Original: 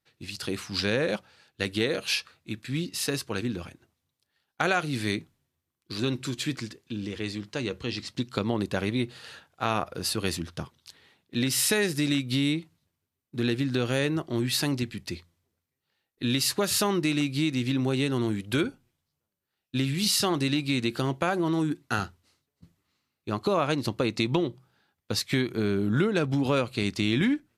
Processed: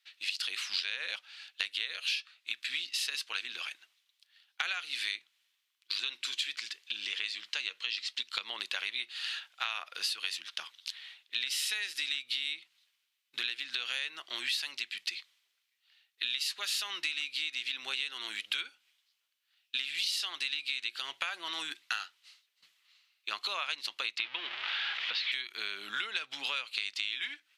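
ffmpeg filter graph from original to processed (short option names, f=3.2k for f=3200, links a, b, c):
-filter_complex "[0:a]asettb=1/sr,asplit=3[a][b][c];[a]atrim=end=24.184[d];[b]atrim=start=24.18:end=25.32,asetpts=PTS-STARTPTS,afade=t=in:d=0.004:c=qsin,afade=t=out:st=1.136:d=0.004:c=qsin,aeval=exprs='val(0)+0.5*0.0531*sgn(val(0))':c=same,lowpass=f=3.5k:w=0.5412,lowpass=f=3.5k:w=1.3066[e];[c]atrim=start=25.316[f];[d][e]acrossfade=d=0.004:c1=hsin:c2=qsin[g];[g][f]acrossfade=d=0.004:c1=qsin:c2=hsin,highpass=1.3k,equalizer=f=3.1k:t=o:w=1.8:g=15,acompressor=threshold=-32dB:ratio=6"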